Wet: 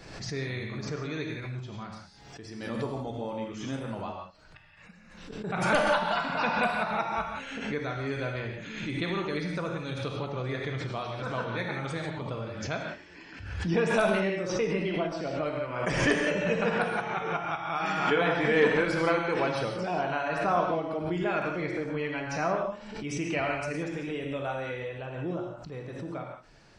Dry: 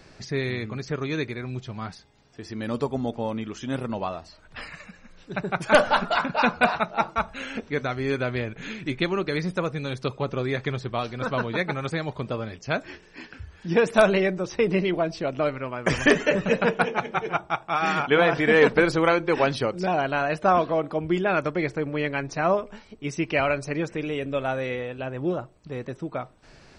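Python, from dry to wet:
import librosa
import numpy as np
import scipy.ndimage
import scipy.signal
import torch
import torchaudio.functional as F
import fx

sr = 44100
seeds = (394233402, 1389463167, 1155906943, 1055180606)

y = fx.gate_flip(x, sr, shuts_db=-29.0, range_db=-37, at=(4.12, 5.44))
y = y + 10.0 ** (-17.5 / 20.0) * np.pad(y, (int(75 * sr / 1000.0), 0))[:len(y)]
y = fx.rev_gated(y, sr, seeds[0], gate_ms=200, shape='flat', drr_db=0.5)
y = fx.pre_swell(y, sr, db_per_s=52.0)
y = y * librosa.db_to_amplitude(-8.5)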